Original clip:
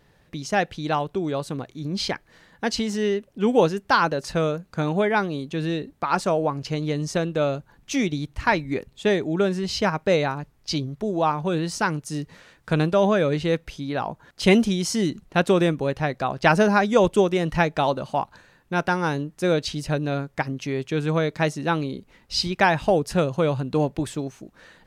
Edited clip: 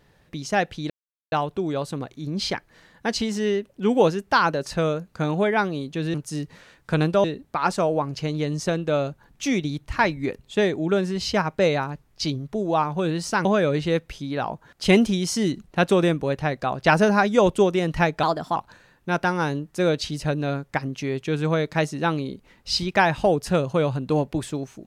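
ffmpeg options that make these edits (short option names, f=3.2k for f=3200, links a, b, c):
-filter_complex "[0:a]asplit=7[a][b][c][d][e][f][g];[a]atrim=end=0.9,asetpts=PTS-STARTPTS,afade=t=out:st=0.896:d=0.004:c=hsin,apad=pad_dur=0.42[h];[b]atrim=start=0.9:end=5.722,asetpts=PTS-STARTPTS,afade=t=in:d=0.004:c=hsin[i];[c]atrim=start=11.928:end=13.032[j];[d]atrim=start=5.718:end=11.932[k];[e]atrim=start=13.028:end=17.814[l];[f]atrim=start=17.81:end=18.2,asetpts=PTS-STARTPTS,asetrate=52038,aresample=44100,atrim=end_sample=14575,asetpts=PTS-STARTPTS[m];[g]atrim=start=18.196[n];[h][i]concat=n=2:v=0:a=1[o];[o][j]acrossfade=d=0.004:c1=hsin:c2=hsin[p];[p][k]acrossfade=d=0.004:c1=hsin:c2=hsin[q];[q][l]acrossfade=d=0.004:c1=hsin:c2=hsin[r];[r][m]acrossfade=d=0.004:c1=hsin:c2=hsin[s];[s][n]acrossfade=d=0.004:c1=hsin:c2=hsin"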